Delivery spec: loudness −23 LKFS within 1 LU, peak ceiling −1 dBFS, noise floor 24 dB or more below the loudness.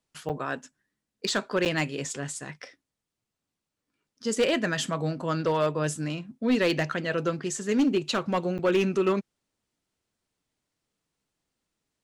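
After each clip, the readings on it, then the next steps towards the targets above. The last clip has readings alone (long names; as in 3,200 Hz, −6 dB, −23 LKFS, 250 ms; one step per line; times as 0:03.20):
share of clipped samples 0.5%; peaks flattened at −17.5 dBFS; number of dropouts 3; longest dropout 8.2 ms; integrated loudness −27.5 LKFS; sample peak −17.5 dBFS; target loudness −23.0 LKFS
→ clipped peaks rebuilt −17.5 dBFS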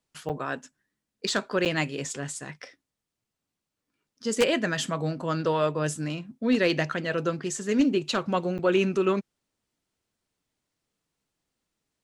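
share of clipped samples 0.0%; number of dropouts 3; longest dropout 8.2 ms
→ repair the gap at 0:00.29/0:01.65/0:08.58, 8.2 ms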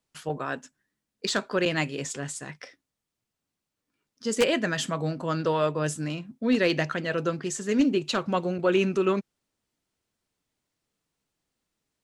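number of dropouts 0; integrated loudness −27.0 LKFS; sample peak −8.5 dBFS; target loudness −23.0 LKFS
→ level +4 dB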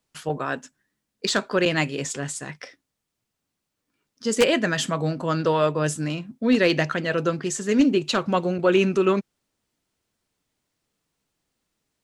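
integrated loudness −23.0 LKFS; sample peak −4.5 dBFS; background noise floor −82 dBFS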